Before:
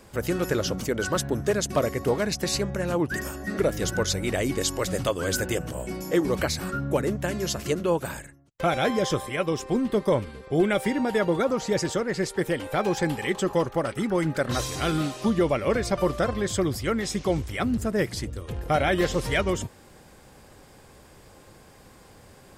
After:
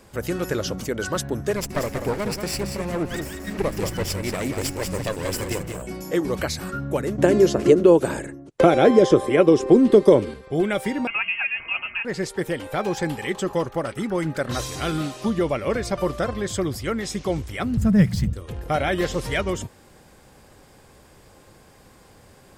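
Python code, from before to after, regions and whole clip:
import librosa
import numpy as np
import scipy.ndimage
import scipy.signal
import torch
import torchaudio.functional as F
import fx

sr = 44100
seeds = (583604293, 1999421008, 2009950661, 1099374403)

y = fx.chain(x, sr, fx.lower_of_two(delay_ms=0.39),
    fx.peak_eq(hz=3200.0, db=-4.0, octaves=0.22),
    fx.echo_single(ms=184, db=-7.0), at=(1.56, 5.82))
y = fx.chain(y, sr, fx.lowpass(hz=11000.0, slope=24),
    fx.peak_eq(hz=370.0, db=14.0, octaves=1.5),
    fx.band_squash(depth_pct=70), at=(7.18, 10.34))
y = fx.chain(y, sr, fx.highpass(hz=340.0, slope=6),
    fx.freq_invert(carrier_hz=3000), at=(11.07, 12.05))
y = fx.chain(y, sr, fx.low_shelf_res(hz=250.0, db=9.5, q=3.0),
    fx.resample_linear(factor=2), at=(17.77, 18.33))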